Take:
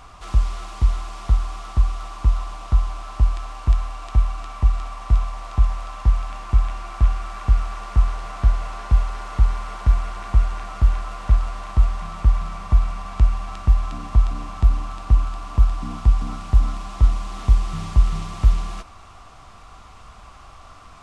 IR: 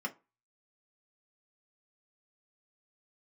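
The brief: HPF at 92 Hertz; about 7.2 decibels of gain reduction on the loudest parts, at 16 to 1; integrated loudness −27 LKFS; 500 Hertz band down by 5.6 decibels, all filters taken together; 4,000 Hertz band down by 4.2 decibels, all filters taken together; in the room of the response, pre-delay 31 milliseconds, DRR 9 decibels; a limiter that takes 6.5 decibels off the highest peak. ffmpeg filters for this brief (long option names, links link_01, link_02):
-filter_complex "[0:a]highpass=92,equalizer=frequency=500:width_type=o:gain=-8.5,equalizer=frequency=4000:width_type=o:gain=-5.5,acompressor=threshold=-25dB:ratio=16,alimiter=level_in=0.5dB:limit=-24dB:level=0:latency=1,volume=-0.5dB,asplit=2[link_01][link_02];[1:a]atrim=start_sample=2205,adelay=31[link_03];[link_02][link_03]afir=irnorm=-1:irlink=0,volume=-12dB[link_04];[link_01][link_04]amix=inputs=2:normalize=0,volume=10dB"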